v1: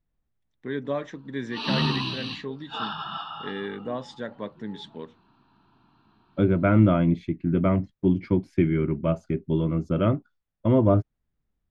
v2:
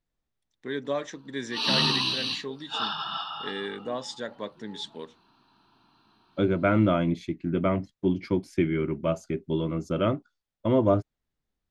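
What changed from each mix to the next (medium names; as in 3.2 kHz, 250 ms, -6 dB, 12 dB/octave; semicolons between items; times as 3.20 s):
master: add tone controls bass -7 dB, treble +14 dB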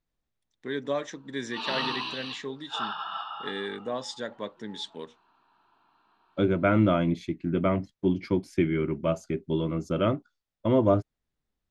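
background: add three-band isolator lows -15 dB, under 430 Hz, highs -17 dB, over 2.7 kHz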